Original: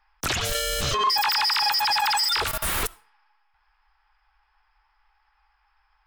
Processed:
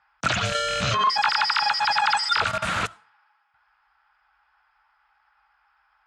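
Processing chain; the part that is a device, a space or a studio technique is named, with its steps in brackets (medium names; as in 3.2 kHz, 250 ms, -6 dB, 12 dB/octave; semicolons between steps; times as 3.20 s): car door speaker with a rattle (rattle on loud lows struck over -34 dBFS, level -19 dBFS; cabinet simulation 95–6900 Hz, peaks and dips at 110 Hz +9 dB, 190 Hz +9 dB, 390 Hz -9 dB, 630 Hz +6 dB, 1.4 kHz +9 dB, 5.4 kHz -5 dB)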